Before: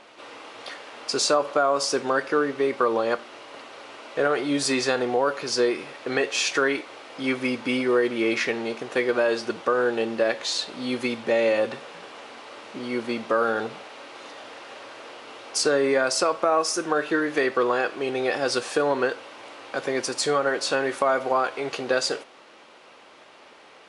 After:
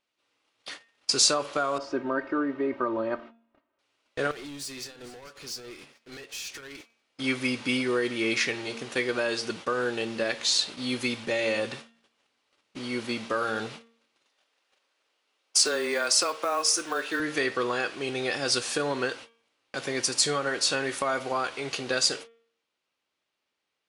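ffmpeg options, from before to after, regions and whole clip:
-filter_complex "[0:a]asettb=1/sr,asplit=3[a][b][c];[a]atrim=end=1.784[d];[b]atrim=start=1.78:end=3.79,asetpts=PTS-STARTPTS,afade=t=in:d=0.004:c=qsin,afade=t=out:st=2.006:d=0.004:c=qsin,lowpass=1.2k,aecho=1:1:3.2:0.74,atrim=end_sample=88641[e];[c]atrim=start=3.786[f];[d][e]acrossfade=d=0.004:c1=hsin:c2=qsin[g];[g][f]acrossfade=d=0.004:c1=qsin:c2=hsin,asettb=1/sr,asplit=3[h][i][j];[h]atrim=end=4.314[k];[i]atrim=start=4.31:end=7.05,asetpts=PTS-STARTPTS,afade=t=in:d=0.004:c=qsin,afade=t=out:st=2.736:d=0.004:c=qsin,acompressor=threshold=-30dB:ratio=12:attack=3.2:release=140:knee=1:detection=peak,asoftclip=type=hard:threshold=-33.5dB,aecho=1:1:448:0.15,atrim=end_sample=120834[l];[j]atrim=start=7.046[m];[k][l]acrossfade=d=0.004:c1=hsin:c2=qsin[n];[n][m]acrossfade=d=0.004:c1=qsin:c2=hsin,asettb=1/sr,asplit=3[o][p][q];[o]atrim=end=14.244[r];[p]atrim=start=14.24:end=17.2,asetpts=PTS-STARTPTS,afade=t=in:d=0.004:c=qsin,afade=t=out:st=2.956:d=0.004:c=qsin,highpass=390,acrusher=bits=9:mode=log:mix=0:aa=0.000001,afreqshift=-15[s];[q]atrim=start=17.196[t];[r][s]acrossfade=d=0.004:c1=hsin:c2=qsin[u];[u][t]acrossfade=d=0.004:c1=qsin:c2=hsin,agate=range=-30dB:threshold=-37dB:ratio=16:detection=peak,equalizer=f=650:w=0.34:g=-13,bandreject=f=230.2:t=h:w=4,bandreject=f=460.4:t=h:w=4,bandreject=f=690.6:t=h:w=4,bandreject=f=920.8:t=h:w=4,bandreject=f=1.151k:t=h:w=4,bandreject=f=1.3812k:t=h:w=4,bandreject=f=1.6114k:t=h:w=4,bandreject=f=1.8416k:t=h:w=4,bandreject=f=2.0718k:t=h:w=4,bandreject=f=2.302k:t=h:w=4,bandreject=f=2.5322k:t=h:w=4,bandreject=f=2.7624k:t=h:w=4,bandreject=f=2.9926k:t=h:w=4,bandreject=f=3.2228k:t=h:w=4,bandreject=f=3.453k:t=h:w=4,volume=5.5dB"

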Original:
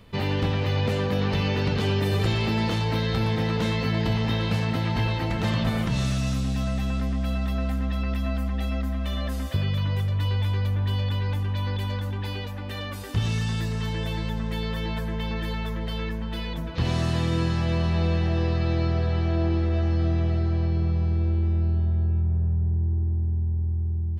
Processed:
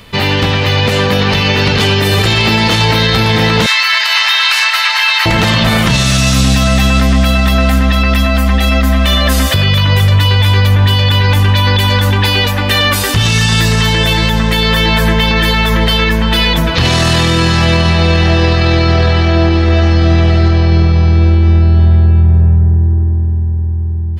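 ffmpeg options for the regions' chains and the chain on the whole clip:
-filter_complex "[0:a]asettb=1/sr,asplit=3[a][b][c];[a]atrim=end=3.664[d];[b]atrim=start=3.66:end=5.26,asetpts=PTS-STARTPTS,afade=t=in:d=0.004:c=qsin,afade=t=out:st=1.596:d=0.004:c=qsin,highpass=f=1.1k:w=0.5412,highpass=f=1.1k:w=1.3066,bandreject=f=3.3k:w=14[e];[c]atrim=start=5.256[f];[d][e]acrossfade=d=0.004:c1=hsin:c2=qsin[g];[g][f]acrossfade=d=0.004:c1=qsin:c2=hsin,tiltshelf=f=970:g=-5,dynaudnorm=f=180:g=21:m=8dB,alimiter=level_in=16.5dB:limit=-1dB:release=50:level=0:latency=1,volume=-1dB"

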